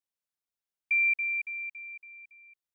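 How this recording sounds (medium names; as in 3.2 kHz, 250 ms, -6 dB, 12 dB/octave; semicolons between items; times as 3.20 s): noise floor -93 dBFS; spectral tilt +1.0 dB/octave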